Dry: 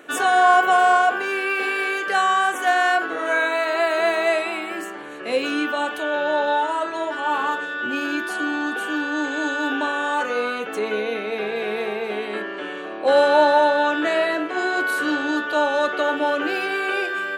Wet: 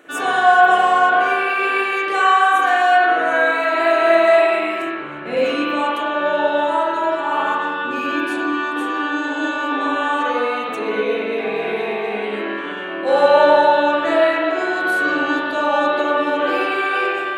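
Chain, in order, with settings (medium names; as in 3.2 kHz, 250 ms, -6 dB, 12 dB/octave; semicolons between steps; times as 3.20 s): 4.82–5.37 s: tone controls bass +9 dB, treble -11 dB; spring tank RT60 1.5 s, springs 48/54 ms, chirp 55 ms, DRR -6.5 dB; trim -3.5 dB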